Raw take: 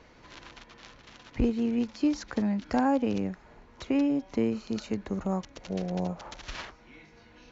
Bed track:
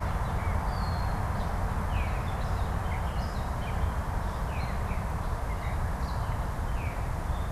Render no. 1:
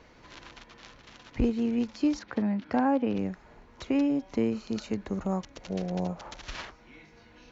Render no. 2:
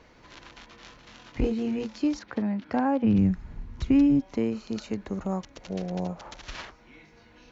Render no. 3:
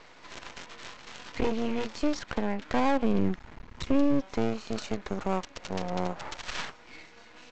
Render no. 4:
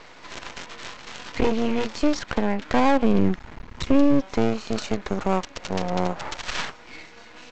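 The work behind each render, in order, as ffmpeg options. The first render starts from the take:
-filter_complex "[0:a]asettb=1/sr,asplit=3[a][b][c];[a]atrim=end=2.194[d];[b]atrim=start=2.19:end=3.19,asetpts=PTS-STARTPTS,afade=t=in:d=0.004:c=qsin,afade=t=out:st=0.996:d=0.004:c=qsin,highpass=100,lowpass=3.3k[e];[c]atrim=start=3.186[f];[d][e]acrossfade=d=0.004:c1=hsin:c2=qsin[g];[g][f]acrossfade=d=0.004:c1=qsin:c2=hsin"
-filter_complex "[0:a]asettb=1/sr,asplit=3[a][b][c];[a]atrim=end=0.564[d];[b]atrim=start=0.56:end=1.99,asetpts=PTS-STARTPTS,afade=t=in:d=0.004:c=qsin,afade=t=out:st=1.426:d=0.004:c=qsin,asplit=2[e][f];[f]adelay=23,volume=-3.5dB[g];[e][g]amix=inputs=2:normalize=0,atrim=end_sample=63063[h];[c]atrim=start=1.986[i];[d][h]acrossfade=d=0.004:c1=hsin:c2=qsin[j];[j][i]acrossfade=d=0.004:c1=qsin:c2=hsin,asplit=3[k][l][m];[k]afade=t=out:st=3.03:d=0.02[n];[l]asubboost=boost=11.5:cutoff=170,afade=t=in:st=3.03:d=0.02,afade=t=out:st=4.2:d=0.02[o];[m]afade=t=in:st=4.2:d=0.02[p];[n][o][p]amix=inputs=3:normalize=0"
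-filter_complex "[0:a]asplit=2[a][b];[b]highpass=f=720:p=1,volume=16dB,asoftclip=type=tanh:threshold=-11.5dB[c];[a][c]amix=inputs=2:normalize=0,lowpass=f=4.8k:p=1,volume=-6dB,aresample=16000,aeval=exprs='max(val(0),0)':c=same,aresample=44100"
-af "volume=6.5dB"

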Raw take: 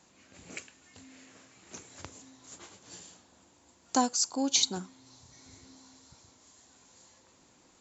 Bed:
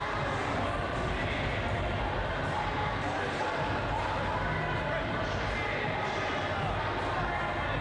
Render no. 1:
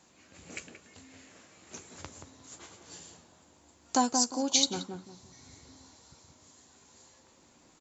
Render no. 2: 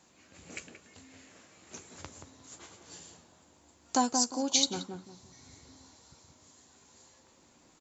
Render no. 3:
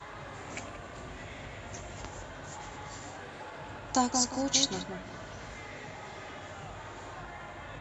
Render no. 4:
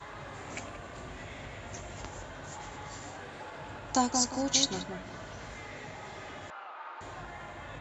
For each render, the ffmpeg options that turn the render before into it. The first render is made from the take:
-filter_complex "[0:a]asplit=2[a][b];[b]adelay=13,volume=-12dB[c];[a][c]amix=inputs=2:normalize=0,asplit=2[d][e];[e]adelay=178,lowpass=f=900:p=1,volume=-3.5dB,asplit=2[f][g];[g]adelay=178,lowpass=f=900:p=1,volume=0.3,asplit=2[h][i];[i]adelay=178,lowpass=f=900:p=1,volume=0.3,asplit=2[j][k];[k]adelay=178,lowpass=f=900:p=1,volume=0.3[l];[d][f][h][j][l]amix=inputs=5:normalize=0"
-af "volume=-1dB"
-filter_complex "[1:a]volume=-12.5dB[a];[0:a][a]amix=inputs=2:normalize=0"
-filter_complex "[0:a]asettb=1/sr,asplit=3[a][b][c];[a]atrim=end=6.504[d];[b]atrim=start=6.5:end=7.01,asetpts=PTS-STARTPTS,afade=t=in:d=0.004:c=qsin,afade=t=out:st=0.506:d=0.004:c=qsin,highpass=f=430:w=0.5412,highpass=f=430:w=1.3066,equalizer=f=430:t=q:w=4:g=-9,equalizer=f=640:t=q:w=4:g=-5,equalizer=f=930:t=q:w=4:g=4,equalizer=f=1.3k:t=q:w=4:g=7,equalizer=f=1.9k:t=q:w=4:g=-5,equalizer=f=3.4k:t=q:w=4:g=-6,lowpass=f=3.7k:w=0.5412,lowpass=f=3.7k:w=1.3066[e];[c]atrim=start=7.006[f];[d][e]acrossfade=d=0.004:c1=hsin:c2=qsin[g];[g][f]acrossfade=d=0.004:c1=qsin:c2=hsin"

